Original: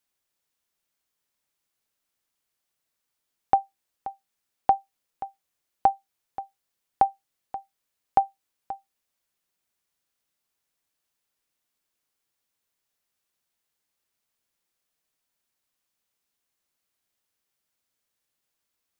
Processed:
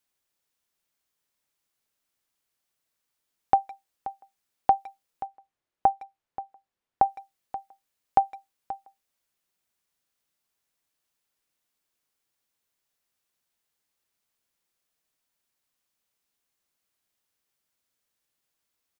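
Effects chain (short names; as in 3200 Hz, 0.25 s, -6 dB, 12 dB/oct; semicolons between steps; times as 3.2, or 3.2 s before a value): 5.26–7.06 LPF 1700 Hz 6 dB/oct; speakerphone echo 0.16 s, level -21 dB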